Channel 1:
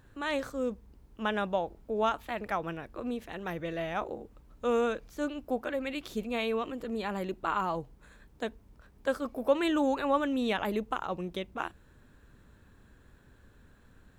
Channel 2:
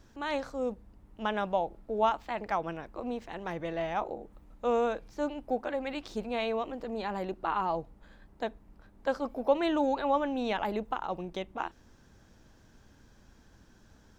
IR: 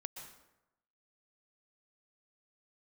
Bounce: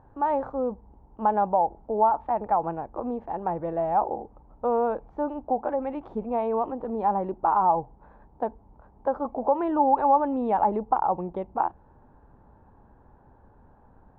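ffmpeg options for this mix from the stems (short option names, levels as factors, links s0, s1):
-filter_complex "[0:a]volume=1.26[s0];[1:a]volume=0.178,asplit=2[s1][s2];[s2]apad=whole_len=625391[s3];[s0][s3]sidechaincompress=threshold=0.00631:ratio=3:attack=12:release=108[s4];[s4][s1]amix=inputs=2:normalize=0,lowpass=f=850:t=q:w=5.7"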